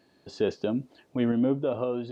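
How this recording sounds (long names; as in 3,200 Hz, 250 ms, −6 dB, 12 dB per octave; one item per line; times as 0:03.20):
sample-and-hold tremolo 3.8 Hz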